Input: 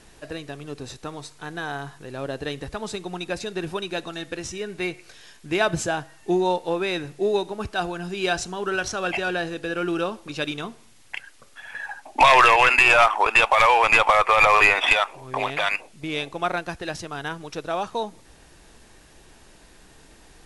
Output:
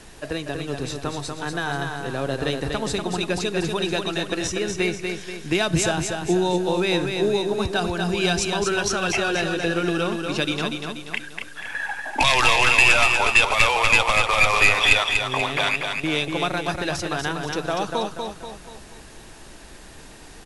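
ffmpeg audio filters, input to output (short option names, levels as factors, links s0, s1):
-filter_complex "[0:a]acrossover=split=260|3000[s0][s1][s2];[s1]acompressor=threshold=0.0316:ratio=4[s3];[s0][s3][s2]amix=inputs=3:normalize=0,aecho=1:1:241|482|723|964|1205|1446:0.562|0.259|0.119|0.0547|0.0252|0.0116,volume=2"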